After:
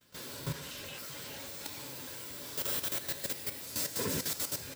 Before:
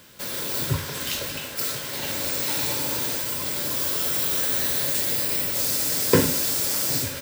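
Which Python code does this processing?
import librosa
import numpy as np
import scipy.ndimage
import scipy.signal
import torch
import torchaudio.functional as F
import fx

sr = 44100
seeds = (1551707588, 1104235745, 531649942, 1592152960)

y = fx.granulator(x, sr, seeds[0], grain_ms=104.0, per_s=30.0, spray_ms=100.0, spread_st=0)
y = fx.stretch_vocoder_free(y, sr, factor=0.66)
y = fx.level_steps(y, sr, step_db=11)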